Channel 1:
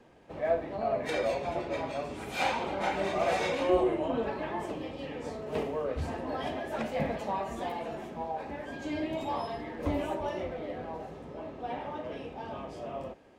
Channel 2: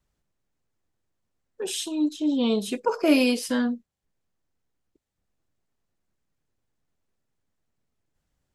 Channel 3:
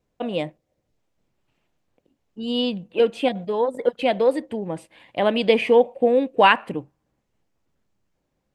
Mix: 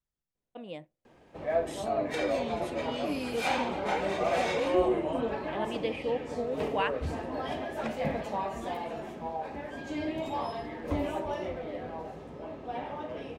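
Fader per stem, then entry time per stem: 0.0 dB, -15.5 dB, -16.0 dB; 1.05 s, 0.00 s, 0.35 s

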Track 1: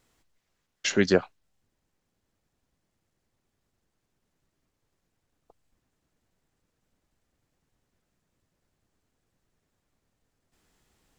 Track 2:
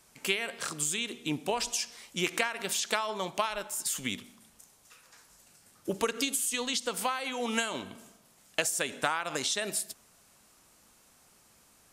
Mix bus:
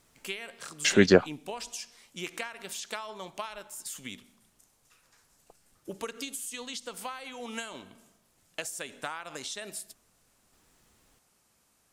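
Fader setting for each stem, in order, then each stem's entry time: +2.5 dB, -7.5 dB; 0.00 s, 0.00 s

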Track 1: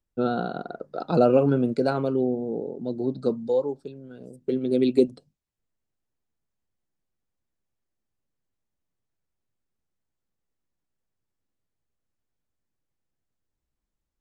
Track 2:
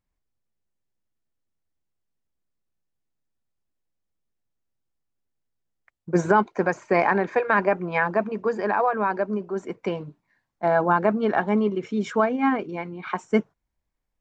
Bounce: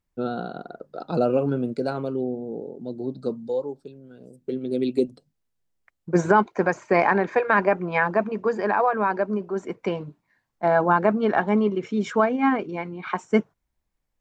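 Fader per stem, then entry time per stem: -3.0 dB, +1.0 dB; 0.00 s, 0.00 s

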